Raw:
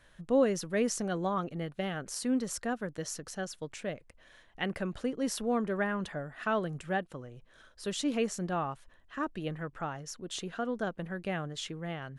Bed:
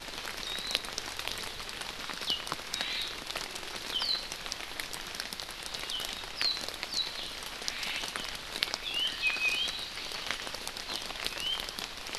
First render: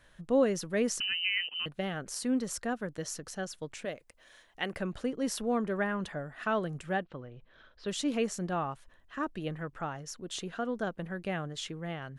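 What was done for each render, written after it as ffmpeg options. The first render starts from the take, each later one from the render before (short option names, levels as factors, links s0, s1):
-filter_complex "[0:a]asettb=1/sr,asplit=3[s0][s1][s2];[s0]atrim=end=1.004[s3];[s1]atrim=start=1:end=1.66,asetpts=PTS-STARTPTS,afade=t=in:d=0.004:c=qsin,afade=t=out:st=0.656:d=0.004:c=qsin,lowpass=f=2700:t=q:w=0.5098,lowpass=f=2700:t=q:w=0.6013,lowpass=f=2700:t=q:w=0.9,lowpass=f=2700:t=q:w=2.563,afreqshift=-3200[s4];[s2]atrim=start=1.656[s5];[s3][s4]acrossfade=d=0.004:c1=hsin:c2=qsin[s6];[s6][s5]acrossfade=d=0.004:c1=qsin:c2=hsin,asettb=1/sr,asplit=3[s7][s8][s9];[s7]atrim=end=3.854[s10];[s8]atrim=start=3.85:end=4.73,asetpts=PTS-STARTPTS,afade=t=in:d=0.004:c=qsin,afade=t=out:st=0.876:d=0.004:c=qsin,bass=f=250:g=-8,treble=f=4000:g=6[s11];[s9]atrim=start=4.726[s12];[s10][s11]acrossfade=d=0.004:c1=hsin:c2=qsin[s13];[s13][s12]acrossfade=d=0.004:c1=qsin:c2=hsin,asplit=3[s14][s15][s16];[s14]afade=t=out:st=7.02:d=0.02[s17];[s15]lowpass=f=4200:w=0.5412,lowpass=f=4200:w=1.3066,afade=t=in:st=7.02:d=0.02,afade=t=out:st=7.87:d=0.02[s18];[s16]afade=t=in:st=7.87:d=0.02[s19];[s17][s18][s19]amix=inputs=3:normalize=0"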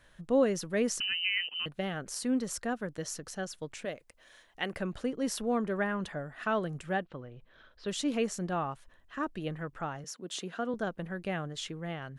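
-filter_complex "[0:a]asettb=1/sr,asplit=3[s0][s1][s2];[s0]atrim=end=10.044[s3];[s1]atrim=start=10.04:end=10.74,asetpts=PTS-STARTPTS,afade=t=in:d=0.004:c=qsin,afade=t=out:st=0.696:d=0.004:c=qsin,highpass=f=160:w=0.5412,highpass=f=160:w=1.3066[s4];[s2]atrim=start=10.736[s5];[s3][s4]acrossfade=d=0.004:c1=hsin:c2=qsin[s6];[s6][s5]acrossfade=d=0.004:c1=qsin:c2=hsin"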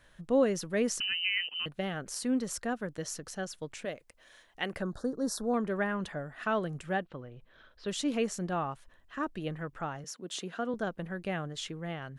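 -filter_complex "[0:a]asettb=1/sr,asplit=3[s0][s1][s2];[s0]atrim=end=4.824[s3];[s1]atrim=start=4.82:end=5.54,asetpts=PTS-STARTPTS,afade=t=in:d=0.004:c=qsin,afade=t=out:st=0.716:d=0.004:c=qsin,asuperstop=centerf=2500:order=8:qfactor=1.2[s4];[s2]atrim=start=5.536[s5];[s3][s4]acrossfade=d=0.004:c1=hsin:c2=qsin[s6];[s6][s5]acrossfade=d=0.004:c1=qsin:c2=hsin"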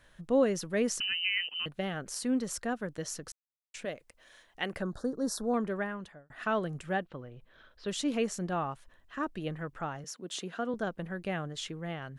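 -filter_complex "[0:a]asplit=4[s0][s1][s2][s3];[s0]atrim=end=3.32,asetpts=PTS-STARTPTS,afade=t=out:st=3.316:d=0.004:c=hsin[s4];[s1]atrim=start=3.32:end=3.74,asetpts=PTS-STARTPTS,volume=0[s5];[s2]atrim=start=3.74:end=6.3,asetpts=PTS-STARTPTS,afade=t=in:d=0.004:c=hsin,afade=t=out:st=1.88:d=0.68[s6];[s3]atrim=start=6.3,asetpts=PTS-STARTPTS,afade=t=in:d=0.004:c=hsin[s7];[s4][s5][s6][s7]concat=n=4:v=0:a=1"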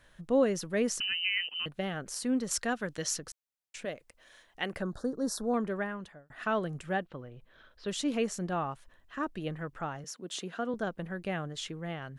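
-filter_complex "[0:a]asettb=1/sr,asplit=3[s0][s1][s2];[s0]atrim=end=2.514[s3];[s1]atrim=start=2.51:end=3.19,asetpts=PTS-STARTPTS,afade=t=in:d=0.004:c=qsin,afade=t=out:st=0.676:d=0.004:c=qsin,equalizer=f=4200:w=0.35:g=8[s4];[s2]atrim=start=3.186[s5];[s3][s4]acrossfade=d=0.004:c1=hsin:c2=qsin[s6];[s6][s5]acrossfade=d=0.004:c1=qsin:c2=hsin"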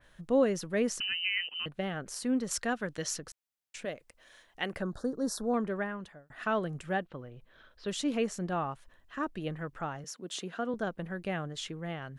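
-af "adynamicequalizer=threshold=0.00398:dfrequency=3600:dqfactor=0.7:tfrequency=3600:tqfactor=0.7:attack=5:release=100:ratio=0.375:range=2.5:mode=cutabove:tftype=highshelf"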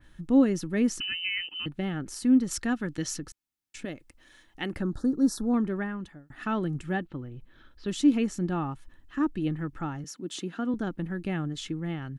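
-af "lowshelf=f=370:t=q:w=3:g=7,aecho=1:1:2.3:0.34"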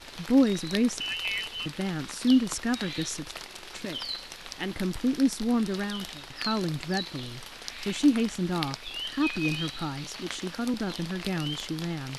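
-filter_complex "[1:a]volume=0.668[s0];[0:a][s0]amix=inputs=2:normalize=0"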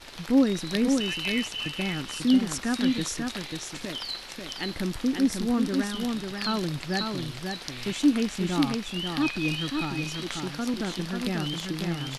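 -af "aecho=1:1:541:0.596"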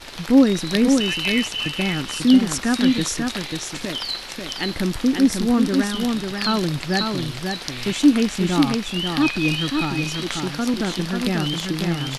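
-af "volume=2.24,alimiter=limit=0.891:level=0:latency=1"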